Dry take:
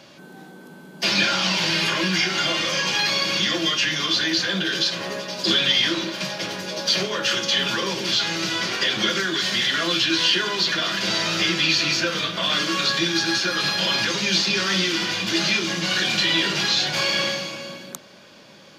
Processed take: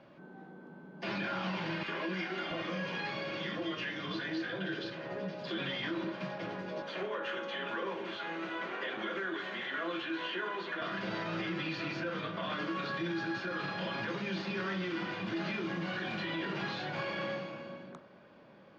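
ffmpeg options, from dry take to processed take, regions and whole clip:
ffmpeg -i in.wav -filter_complex "[0:a]asettb=1/sr,asplit=3[link_01][link_02][link_03];[link_01]atrim=end=1.834[link_04];[link_02]atrim=start=1.83:end=5.58,asetpts=PTS-STARTPTS,afade=type=in:duration=0.004:curve=qsin,afade=type=out:start_time=3.746:duration=0.004:curve=qsin,lowpass=8500,acrossover=split=190|1100[link_05][link_06][link_07];[link_06]adelay=50[link_08];[link_05]adelay=680[link_09];[link_09][link_08][link_07]amix=inputs=3:normalize=0,atrim=end_sample=165375[link_10];[link_03]atrim=start=5.576[link_11];[link_04][link_10]acrossfade=duration=0.004:curve1=hsin:curve2=qsin[link_12];[link_12][link_11]acrossfade=duration=0.004:curve1=qsin:curve2=hsin,asettb=1/sr,asplit=3[link_13][link_14][link_15];[link_13]atrim=end=6.824[link_16];[link_14]atrim=start=6.82:end=10.82,asetpts=PTS-STARTPTS,afade=type=in:duration=0.004:curve=qsin,afade=type=out:start_time=3.996:duration=0.004:curve=qsin,highpass=320,equalizer=frequency=5000:width_type=o:width=0.53:gain=-10[link_17];[link_15]atrim=start=10.816[link_18];[link_16][link_17]acrossfade=duration=0.004:curve1=hsin:curve2=qsin[link_19];[link_19][link_18]acrossfade=duration=0.004:curve1=qsin:curve2=hsin,lowpass=1500,bandreject=frequency=50.83:width_type=h:width=4,bandreject=frequency=101.66:width_type=h:width=4,bandreject=frequency=152.49:width_type=h:width=4,bandreject=frequency=203.32:width_type=h:width=4,bandreject=frequency=254.15:width_type=h:width=4,bandreject=frequency=304.98:width_type=h:width=4,bandreject=frequency=355.81:width_type=h:width=4,bandreject=frequency=406.64:width_type=h:width=4,bandreject=frequency=457.47:width_type=h:width=4,bandreject=frequency=508.3:width_type=h:width=4,bandreject=frequency=559.13:width_type=h:width=4,bandreject=frequency=609.96:width_type=h:width=4,bandreject=frequency=660.79:width_type=h:width=4,bandreject=frequency=711.62:width_type=h:width=4,bandreject=frequency=762.45:width_type=h:width=4,bandreject=frequency=813.28:width_type=h:width=4,bandreject=frequency=864.11:width_type=h:width=4,bandreject=frequency=914.94:width_type=h:width=4,bandreject=frequency=965.77:width_type=h:width=4,bandreject=frequency=1016.6:width_type=h:width=4,bandreject=frequency=1067.43:width_type=h:width=4,bandreject=frequency=1118.26:width_type=h:width=4,bandreject=frequency=1169.09:width_type=h:width=4,bandreject=frequency=1219.92:width_type=h:width=4,bandreject=frequency=1270.75:width_type=h:width=4,bandreject=frequency=1321.58:width_type=h:width=4,bandreject=frequency=1372.41:width_type=h:width=4,bandreject=frequency=1423.24:width_type=h:width=4,bandreject=frequency=1474.07:width_type=h:width=4,bandreject=frequency=1524.9:width_type=h:width=4,bandreject=frequency=1575.73:width_type=h:width=4,bandreject=frequency=1626.56:width_type=h:width=4,bandreject=frequency=1677.39:width_type=h:width=4,bandreject=frequency=1728.22:width_type=h:width=4,bandreject=frequency=1779.05:width_type=h:width=4,bandreject=frequency=1829.88:width_type=h:width=4,bandreject=frequency=1880.71:width_type=h:width=4,alimiter=limit=-20.5dB:level=0:latency=1:release=29,volume=-7dB" out.wav

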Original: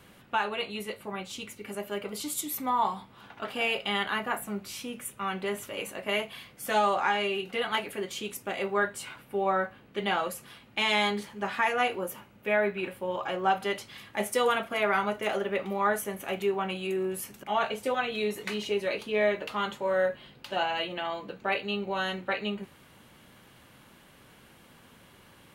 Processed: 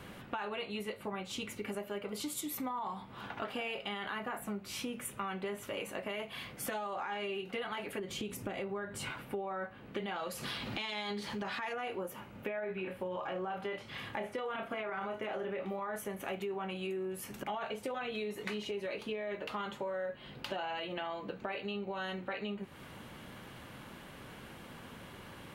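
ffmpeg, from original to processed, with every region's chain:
ffmpeg -i in.wav -filter_complex "[0:a]asettb=1/sr,asplit=3[link_01][link_02][link_03];[link_01]atrim=end=7.994[link_04];[link_02]atrim=start=7.99:end=9.11,asetpts=PTS-STARTPTS,afade=type=in:duration=0.004:curve=qsin,afade=type=out:start_time=1.116:duration=0.004:curve=qsin,lowshelf=frequency=290:gain=10,acompressor=threshold=-35dB:ratio=2.5:attack=3.2:release=140:knee=1:detection=peak[link_05];[link_03]atrim=start=9.106[link_06];[link_04][link_05]acrossfade=duration=0.004:curve1=hsin:curve2=qsin[link_07];[link_07][link_06]acrossfade=duration=0.004:curve1=qsin:curve2=hsin,asettb=1/sr,asplit=3[link_08][link_09][link_10];[link_08]atrim=end=10.164[link_11];[link_09]atrim=start=10.16:end=11.73,asetpts=PTS-STARTPTS,afade=type=in:duration=0.004:curve=qsin,afade=type=out:start_time=1.566:duration=0.004:curve=qsin,acompressor=mode=upward:threshold=-29dB:ratio=2.5:attack=3.2:release=140:knee=2.83:detection=peak,equalizer=frequency=4400:width=1.5:gain=9[link_12];[link_10]atrim=start=11.726[link_13];[link_11][link_12]acrossfade=duration=0.004:curve1=hsin:curve2=qsin[link_14];[link_14][link_13]acrossfade=duration=0.004:curve1=qsin:curve2=hsin,asettb=1/sr,asplit=3[link_15][link_16][link_17];[link_15]atrim=end=12.324[link_18];[link_16]atrim=start=12.32:end=15.96,asetpts=PTS-STARTPTS,afade=type=in:duration=0.004:curve=qsin,afade=type=out:start_time=3.636:duration=0.004:curve=qsin,acrossover=split=3600[link_19][link_20];[link_20]acompressor=threshold=-57dB:ratio=4:attack=1:release=60[link_21];[link_19][link_21]amix=inputs=2:normalize=0,asplit=2[link_22][link_23];[link_23]adelay=27,volume=-6.5dB[link_24];[link_22][link_24]amix=inputs=2:normalize=0,atrim=end_sample=160524[link_25];[link_17]atrim=start=15.956[link_26];[link_18][link_25]acrossfade=duration=0.004:curve1=hsin:curve2=qsin[link_27];[link_27][link_26]acrossfade=duration=0.004:curve1=qsin:curve2=hsin,highshelf=frequency=3700:gain=-7,alimiter=level_in=0.5dB:limit=-24dB:level=0:latency=1:release=13,volume=-0.5dB,acompressor=threshold=-43dB:ratio=6,volume=6.5dB" out.wav

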